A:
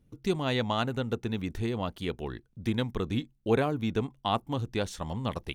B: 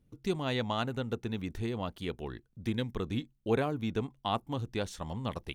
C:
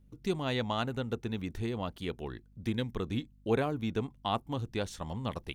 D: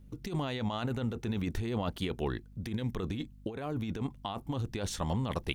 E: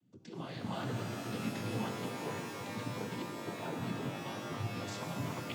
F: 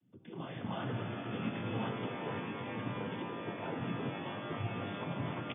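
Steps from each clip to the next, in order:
gain on a spectral selection 0:02.73–0:02.93, 570–1,500 Hz −6 dB; level −3.5 dB
mains hum 50 Hz, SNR 26 dB
compressor whose output falls as the input rises −37 dBFS, ratio −1; level +3.5 dB
cochlear-implant simulation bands 16; sample-and-hold tremolo 3.1 Hz; reverb with rising layers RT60 3.6 s, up +12 semitones, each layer −2 dB, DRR 3 dB; level −5 dB
linear-phase brick-wall low-pass 3,600 Hz; on a send: single-tap delay 1,026 ms −8 dB

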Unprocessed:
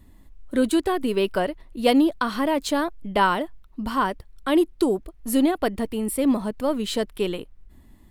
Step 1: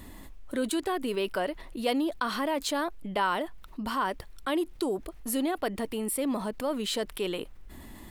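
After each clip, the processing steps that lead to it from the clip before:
low-shelf EQ 240 Hz −10.5 dB
envelope flattener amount 50%
level −8 dB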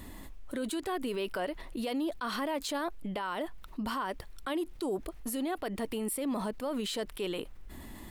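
brickwall limiter −26 dBFS, peak gain reduction 10.5 dB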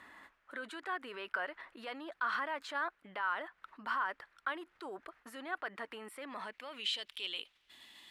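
band-pass filter sweep 1,500 Hz → 3,300 Hz, 0:06.14–0:07.06
level +5.5 dB

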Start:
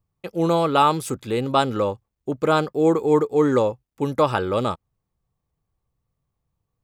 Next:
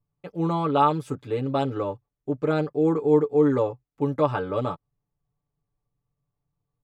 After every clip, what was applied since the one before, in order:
low-pass filter 1,500 Hz 6 dB per octave
comb filter 6.9 ms, depth 88%
level −5.5 dB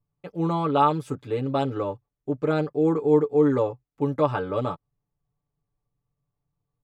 no processing that can be heard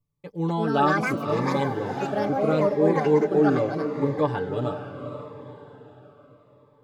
delay with pitch and tempo change per echo 303 ms, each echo +5 semitones, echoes 2
on a send: feedback delay with all-pass diffusion 482 ms, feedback 46%, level −9 dB
on the sum: phaser whose notches keep moving one way falling 0.77 Hz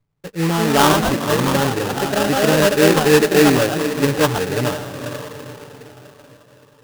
sample-rate reduction 2,200 Hz, jitter 20%
level +7 dB

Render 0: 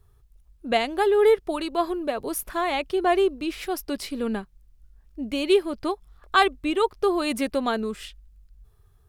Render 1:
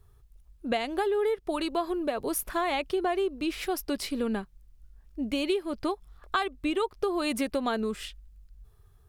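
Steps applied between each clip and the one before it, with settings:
downward compressor 10 to 1, threshold −24 dBFS, peak gain reduction 12 dB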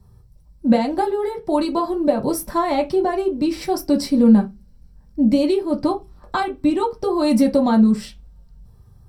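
convolution reverb RT60 0.20 s, pre-delay 3 ms, DRR 0 dB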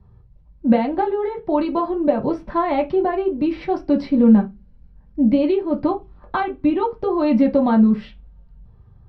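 low-pass filter 3,100 Hz 24 dB per octave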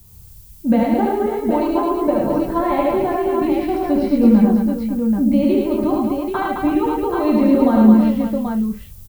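low-shelf EQ 120 Hz +6 dB
background noise violet −48 dBFS
on a send: multi-tap delay 73/106/215/329/539/783 ms −3.5/−3.5/−4.5/−8/−11/−5 dB
on the sum: level −2.5 dB

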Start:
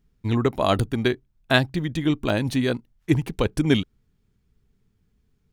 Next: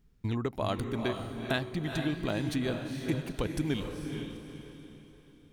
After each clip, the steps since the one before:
downward compressor 3 to 1, threshold −32 dBFS, peak gain reduction 14.5 dB
feedback delay with all-pass diffusion 451 ms, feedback 40%, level −5 dB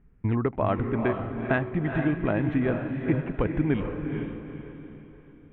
inverse Chebyshev low-pass filter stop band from 4,400 Hz, stop band 40 dB
level +6.5 dB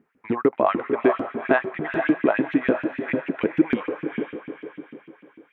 auto-filter high-pass saw up 6.7 Hz 210–2,900 Hz
level +3.5 dB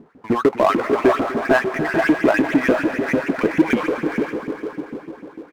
low-pass that shuts in the quiet parts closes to 810 Hz, open at −14.5 dBFS
power curve on the samples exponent 0.7
single-tap delay 248 ms −17 dB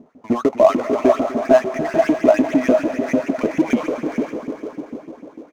thirty-one-band graphic EQ 250 Hz +8 dB, 630 Hz +12 dB, 1,600 Hz −7 dB, 6,300 Hz +9 dB
level −4 dB

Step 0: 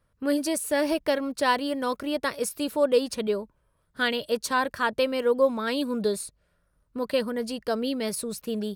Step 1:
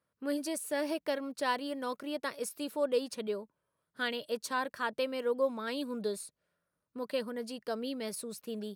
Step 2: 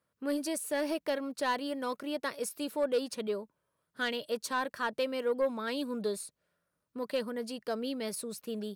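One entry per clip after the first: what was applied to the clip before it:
high-pass filter 170 Hz 12 dB per octave; level −8.5 dB
soft clipping −23 dBFS, distortion −20 dB; level +2 dB

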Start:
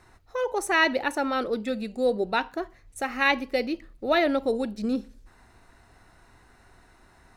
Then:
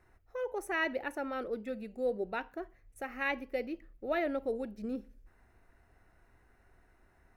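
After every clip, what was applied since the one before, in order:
octave-band graphic EQ 125/250/1,000/4,000/8,000 Hz −4/−4/−7/−12/−10 dB
level −6 dB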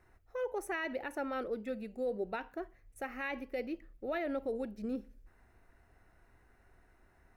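brickwall limiter −28 dBFS, peak gain reduction 7.5 dB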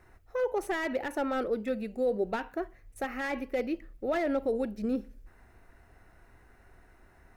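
slew-rate limiting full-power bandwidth 21 Hz
level +7 dB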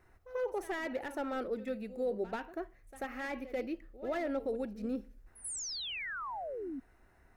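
sound drawn into the spectrogram fall, 0:05.44–0:06.80, 250–11,000 Hz −34 dBFS
echo ahead of the sound 89 ms −15 dB
level −6 dB

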